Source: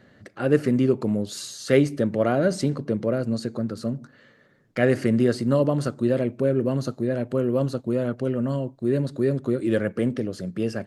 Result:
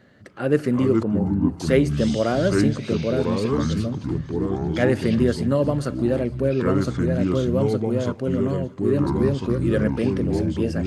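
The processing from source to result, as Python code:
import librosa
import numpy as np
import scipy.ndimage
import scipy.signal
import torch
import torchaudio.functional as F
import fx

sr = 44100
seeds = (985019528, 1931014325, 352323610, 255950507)

y = fx.echo_pitch(x, sr, ms=245, semitones=-5, count=2, db_per_echo=-3.0)
y = fx.lowpass(y, sr, hz=1100.0, slope=24, at=(1.03, 1.6))
y = fx.echo_thinned(y, sr, ms=314, feedback_pct=66, hz=840.0, wet_db=-18.5)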